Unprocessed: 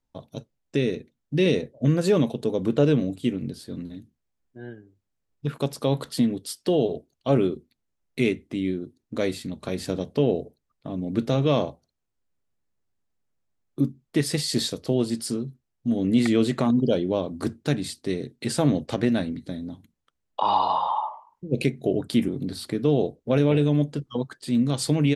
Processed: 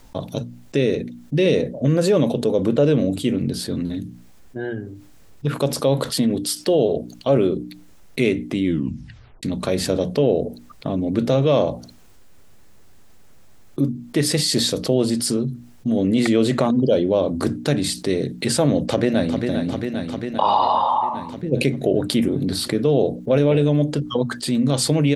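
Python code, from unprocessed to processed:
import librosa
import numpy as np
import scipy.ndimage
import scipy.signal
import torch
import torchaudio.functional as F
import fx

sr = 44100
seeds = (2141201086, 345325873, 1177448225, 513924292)

y = fx.echo_throw(x, sr, start_s=18.73, length_s=0.71, ms=400, feedback_pct=65, wet_db=-9.0)
y = fx.edit(y, sr, fx.tape_stop(start_s=8.65, length_s=0.78), tone=tone)
y = fx.hum_notches(y, sr, base_hz=60, count=5)
y = fx.dynamic_eq(y, sr, hz=550.0, q=3.2, threshold_db=-39.0, ratio=4.0, max_db=6)
y = fx.env_flatten(y, sr, amount_pct=50)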